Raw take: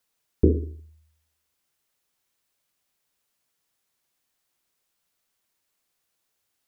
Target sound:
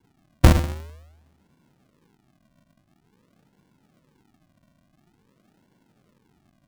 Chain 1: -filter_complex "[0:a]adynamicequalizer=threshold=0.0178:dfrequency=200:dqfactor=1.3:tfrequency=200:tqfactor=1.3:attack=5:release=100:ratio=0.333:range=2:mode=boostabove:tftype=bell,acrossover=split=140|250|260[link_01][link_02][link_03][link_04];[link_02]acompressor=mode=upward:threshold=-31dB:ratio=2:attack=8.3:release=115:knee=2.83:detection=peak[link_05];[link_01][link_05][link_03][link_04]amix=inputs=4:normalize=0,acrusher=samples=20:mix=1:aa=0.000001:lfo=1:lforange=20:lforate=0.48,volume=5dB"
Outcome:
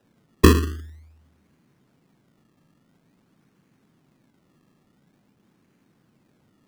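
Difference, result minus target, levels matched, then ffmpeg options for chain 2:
sample-and-hold swept by an LFO: distortion −13 dB
-filter_complex "[0:a]adynamicequalizer=threshold=0.0178:dfrequency=200:dqfactor=1.3:tfrequency=200:tqfactor=1.3:attack=5:release=100:ratio=0.333:range=2:mode=boostabove:tftype=bell,acrossover=split=140|250|260[link_01][link_02][link_03][link_04];[link_02]acompressor=mode=upward:threshold=-31dB:ratio=2:attack=8.3:release=115:knee=2.83:detection=peak[link_05];[link_01][link_05][link_03][link_04]amix=inputs=4:normalize=0,acrusher=samples=70:mix=1:aa=0.000001:lfo=1:lforange=70:lforate=0.48,volume=5dB"

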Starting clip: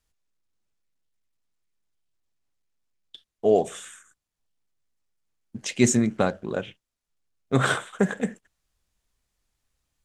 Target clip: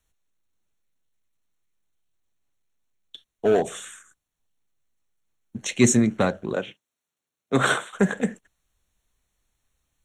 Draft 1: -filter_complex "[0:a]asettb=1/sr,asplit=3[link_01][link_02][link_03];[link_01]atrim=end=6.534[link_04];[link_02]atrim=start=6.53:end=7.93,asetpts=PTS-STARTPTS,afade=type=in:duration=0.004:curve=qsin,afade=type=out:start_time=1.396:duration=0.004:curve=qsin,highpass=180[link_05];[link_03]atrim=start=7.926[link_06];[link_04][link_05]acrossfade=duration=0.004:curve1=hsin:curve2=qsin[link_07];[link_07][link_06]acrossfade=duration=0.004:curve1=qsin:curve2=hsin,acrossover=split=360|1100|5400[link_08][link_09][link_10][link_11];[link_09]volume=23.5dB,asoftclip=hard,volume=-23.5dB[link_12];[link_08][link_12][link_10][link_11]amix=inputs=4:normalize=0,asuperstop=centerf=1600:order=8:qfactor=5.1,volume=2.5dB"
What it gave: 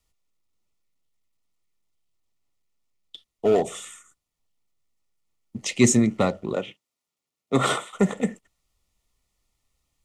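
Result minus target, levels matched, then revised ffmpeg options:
2,000 Hz band −4.5 dB
-filter_complex "[0:a]asettb=1/sr,asplit=3[link_01][link_02][link_03];[link_01]atrim=end=6.534[link_04];[link_02]atrim=start=6.53:end=7.93,asetpts=PTS-STARTPTS,afade=type=in:duration=0.004:curve=qsin,afade=type=out:start_time=1.396:duration=0.004:curve=qsin,highpass=180[link_05];[link_03]atrim=start=7.926[link_06];[link_04][link_05]acrossfade=duration=0.004:curve1=hsin:curve2=qsin[link_07];[link_07][link_06]acrossfade=duration=0.004:curve1=qsin:curve2=hsin,acrossover=split=360|1100|5400[link_08][link_09][link_10][link_11];[link_09]volume=23.5dB,asoftclip=hard,volume=-23.5dB[link_12];[link_08][link_12][link_10][link_11]amix=inputs=4:normalize=0,asuperstop=centerf=4900:order=8:qfactor=5.1,volume=2.5dB"

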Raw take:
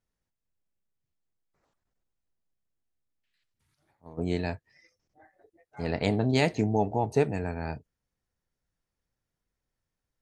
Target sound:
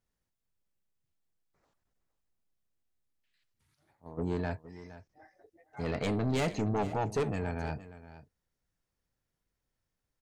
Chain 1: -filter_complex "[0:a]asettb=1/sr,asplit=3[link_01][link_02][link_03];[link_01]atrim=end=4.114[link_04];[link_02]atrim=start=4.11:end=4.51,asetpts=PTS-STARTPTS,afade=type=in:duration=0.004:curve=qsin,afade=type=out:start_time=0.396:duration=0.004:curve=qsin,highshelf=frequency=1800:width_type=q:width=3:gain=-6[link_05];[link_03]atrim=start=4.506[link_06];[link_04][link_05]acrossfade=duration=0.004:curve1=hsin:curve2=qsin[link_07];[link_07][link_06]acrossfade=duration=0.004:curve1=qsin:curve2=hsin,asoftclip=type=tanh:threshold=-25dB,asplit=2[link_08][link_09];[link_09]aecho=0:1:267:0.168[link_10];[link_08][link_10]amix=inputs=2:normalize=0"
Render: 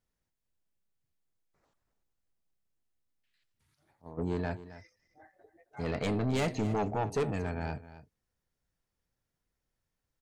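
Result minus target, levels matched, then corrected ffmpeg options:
echo 198 ms early
-filter_complex "[0:a]asettb=1/sr,asplit=3[link_01][link_02][link_03];[link_01]atrim=end=4.114[link_04];[link_02]atrim=start=4.11:end=4.51,asetpts=PTS-STARTPTS,afade=type=in:duration=0.004:curve=qsin,afade=type=out:start_time=0.396:duration=0.004:curve=qsin,highshelf=frequency=1800:width_type=q:width=3:gain=-6[link_05];[link_03]atrim=start=4.506[link_06];[link_04][link_05]acrossfade=duration=0.004:curve1=hsin:curve2=qsin[link_07];[link_07][link_06]acrossfade=duration=0.004:curve1=qsin:curve2=hsin,asoftclip=type=tanh:threshold=-25dB,asplit=2[link_08][link_09];[link_09]aecho=0:1:465:0.168[link_10];[link_08][link_10]amix=inputs=2:normalize=0"

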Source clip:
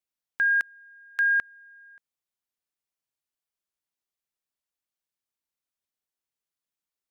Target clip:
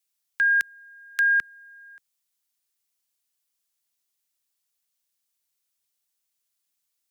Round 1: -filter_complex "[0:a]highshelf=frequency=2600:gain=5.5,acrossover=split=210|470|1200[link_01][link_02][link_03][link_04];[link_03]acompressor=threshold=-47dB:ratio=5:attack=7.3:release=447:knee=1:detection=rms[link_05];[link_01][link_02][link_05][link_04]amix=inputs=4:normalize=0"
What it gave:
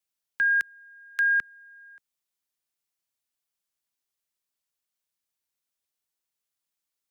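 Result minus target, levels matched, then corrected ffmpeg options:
4,000 Hz band −3.0 dB
-filter_complex "[0:a]highshelf=frequency=2600:gain=13.5,acrossover=split=210|470|1200[link_01][link_02][link_03][link_04];[link_03]acompressor=threshold=-47dB:ratio=5:attack=7.3:release=447:knee=1:detection=rms[link_05];[link_01][link_02][link_05][link_04]amix=inputs=4:normalize=0"

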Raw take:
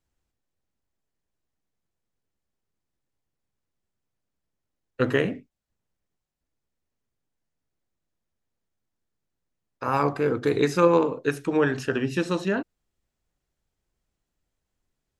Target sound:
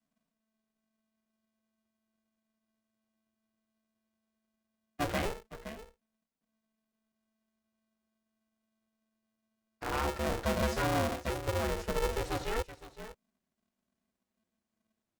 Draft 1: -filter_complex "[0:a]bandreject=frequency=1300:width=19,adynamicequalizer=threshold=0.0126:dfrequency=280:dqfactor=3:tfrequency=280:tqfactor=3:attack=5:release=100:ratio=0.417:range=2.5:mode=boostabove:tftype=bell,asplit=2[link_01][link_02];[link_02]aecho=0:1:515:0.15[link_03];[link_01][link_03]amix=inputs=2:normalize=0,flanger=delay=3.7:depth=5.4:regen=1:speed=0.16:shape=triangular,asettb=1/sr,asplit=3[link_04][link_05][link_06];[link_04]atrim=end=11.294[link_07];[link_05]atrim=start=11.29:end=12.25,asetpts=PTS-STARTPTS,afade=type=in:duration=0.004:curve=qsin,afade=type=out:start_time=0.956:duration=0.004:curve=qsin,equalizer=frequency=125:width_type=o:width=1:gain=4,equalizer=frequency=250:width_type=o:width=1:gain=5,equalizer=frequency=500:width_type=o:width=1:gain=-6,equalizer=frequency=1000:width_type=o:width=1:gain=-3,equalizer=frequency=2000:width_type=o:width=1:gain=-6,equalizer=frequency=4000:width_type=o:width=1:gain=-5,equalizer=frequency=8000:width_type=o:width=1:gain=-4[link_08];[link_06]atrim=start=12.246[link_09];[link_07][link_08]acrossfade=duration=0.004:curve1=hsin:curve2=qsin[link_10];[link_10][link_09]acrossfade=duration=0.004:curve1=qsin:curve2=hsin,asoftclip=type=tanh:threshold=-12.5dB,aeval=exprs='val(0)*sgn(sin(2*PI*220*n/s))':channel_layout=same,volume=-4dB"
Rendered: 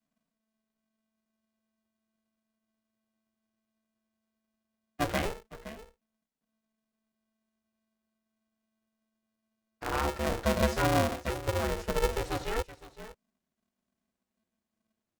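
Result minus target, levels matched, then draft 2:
soft clipping: distortion −10 dB
-filter_complex "[0:a]bandreject=frequency=1300:width=19,adynamicequalizer=threshold=0.0126:dfrequency=280:dqfactor=3:tfrequency=280:tqfactor=3:attack=5:release=100:ratio=0.417:range=2.5:mode=boostabove:tftype=bell,asplit=2[link_01][link_02];[link_02]aecho=0:1:515:0.15[link_03];[link_01][link_03]amix=inputs=2:normalize=0,flanger=delay=3.7:depth=5.4:regen=1:speed=0.16:shape=triangular,asettb=1/sr,asplit=3[link_04][link_05][link_06];[link_04]atrim=end=11.294[link_07];[link_05]atrim=start=11.29:end=12.25,asetpts=PTS-STARTPTS,afade=type=in:duration=0.004:curve=qsin,afade=type=out:start_time=0.956:duration=0.004:curve=qsin,equalizer=frequency=125:width_type=o:width=1:gain=4,equalizer=frequency=250:width_type=o:width=1:gain=5,equalizer=frequency=500:width_type=o:width=1:gain=-6,equalizer=frequency=1000:width_type=o:width=1:gain=-3,equalizer=frequency=2000:width_type=o:width=1:gain=-6,equalizer=frequency=4000:width_type=o:width=1:gain=-5,equalizer=frequency=8000:width_type=o:width=1:gain=-4[link_08];[link_06]atrim=start=12.246[link_09];[link_07][link_08]acrossfade=duration=0.004:curve1=hsin:curve2=qsin[link_10];[link_10][link_09]acrossfade=duration=0.004:curve1=qsin:curve2=hsin,asoftclip=type=tanh:threshold=-21.5dB,aeval=exprs='val(0)*sgn(sin(2*PI*220*n/s))':channel_layout=same,volume=-4dB"

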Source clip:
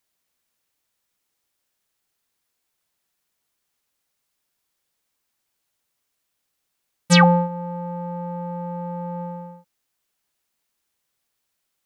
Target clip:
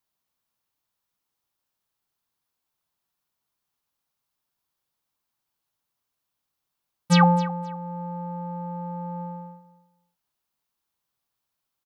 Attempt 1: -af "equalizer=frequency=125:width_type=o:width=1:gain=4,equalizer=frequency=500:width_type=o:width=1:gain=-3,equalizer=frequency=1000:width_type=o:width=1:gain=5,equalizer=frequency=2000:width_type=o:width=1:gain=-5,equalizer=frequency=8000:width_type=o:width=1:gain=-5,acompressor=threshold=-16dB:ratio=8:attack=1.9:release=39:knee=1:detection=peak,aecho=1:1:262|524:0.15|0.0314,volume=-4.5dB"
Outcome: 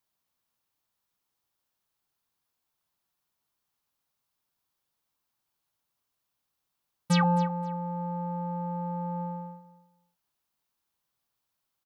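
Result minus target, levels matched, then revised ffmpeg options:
downward compressor: peak gain reduction +10.5 dB
-af "equalizer=frequency=125:width_type=o:width=1:gain=4,equalizer=frequency=500:width_type=o:width=1:gain=-3,equalizer=frequency=1000:width_type=o:width=1:gain=5,equalizer=frequency=2000:width_type=o:width=1:gain=-5,equalizer=frequency=8000:width_type=o:width=1:gain=-5,aecho=1:1:262|524:0.15|0.0314,volume=-4.5dB"

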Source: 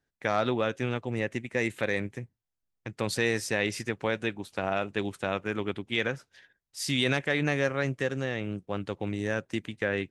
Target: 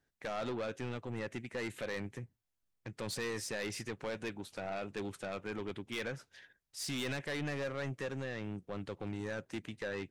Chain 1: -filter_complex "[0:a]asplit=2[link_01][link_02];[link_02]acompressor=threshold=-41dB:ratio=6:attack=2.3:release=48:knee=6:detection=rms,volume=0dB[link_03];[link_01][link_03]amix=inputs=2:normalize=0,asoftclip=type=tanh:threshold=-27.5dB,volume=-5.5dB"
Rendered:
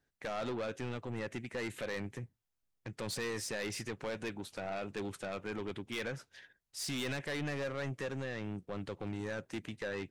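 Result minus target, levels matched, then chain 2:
downward compressor: peak gain reduction −9.5 dB
-filter_complex "[0:a]asplit=2[link_01][link_02];[link_02]acompressor=threshold=-52.5dB:ratio=6:attack=2.3:release=48:knee=6:detection=rms,volume=0dB[link_03];[link_01][link_03]amix=inputs=2:normalize=0,asoftclip=type=tanh:threshold=-27.5dB,volume=-5.5dB"

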